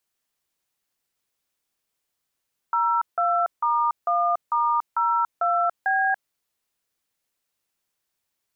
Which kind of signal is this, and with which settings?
DTMF "02*1*02B", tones 285 ms, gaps 162 ms, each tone -21.5 dBFS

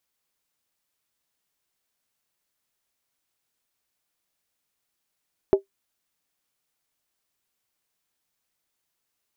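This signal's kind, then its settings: skin hit, lowest mode 392 Hz, decay 0.12 s, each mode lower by 10.5 dB, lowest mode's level -8.5 dB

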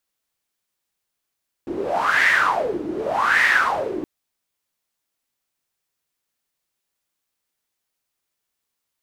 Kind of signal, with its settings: wind-like swept noise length 2.37 s, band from 320 Hz, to 1.9 kHz, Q 8.2, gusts 2, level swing 10.5 dB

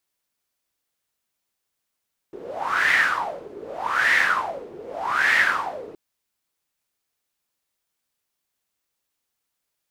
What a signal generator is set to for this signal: wind-like swept noise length 3.62 s, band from 400 Hz, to 1.9 kHz, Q 8.7, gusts 3, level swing 20 dB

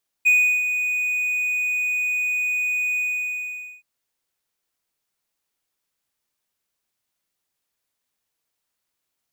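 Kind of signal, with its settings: ADSR triangle 2.48 kHz, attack 20 ms, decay 351 ms, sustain -8.5 dB, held 2.73 s, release 844 ms -10 dBFS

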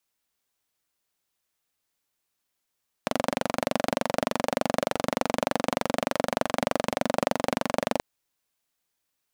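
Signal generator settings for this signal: single-cylinder engine model, steady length 4.93 s, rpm 2800, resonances 250/560 Hz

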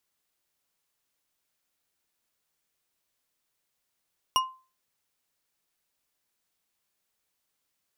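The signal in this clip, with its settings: glass hit bar, lowest mode 1.04 kHz, decay 0.34 s, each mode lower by 3.5 dB, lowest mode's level -18 dB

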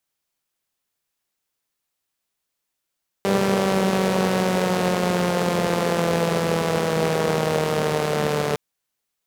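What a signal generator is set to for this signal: four-cylinder engine model, changing speed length 5.31 s, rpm 5900, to 4400, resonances 200/440 Hz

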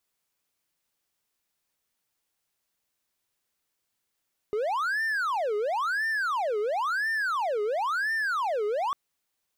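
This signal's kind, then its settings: siren wail 413–1800 Hz 0.97 per s triangle -23 dBFS 4.40 s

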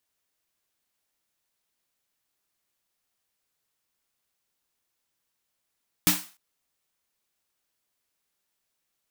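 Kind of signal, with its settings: snare drum length 0.30 s, tones 180 Hz, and 300 Hz, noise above 700 Hz, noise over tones 4.5 dB, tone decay 0.25 s, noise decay 0.37 s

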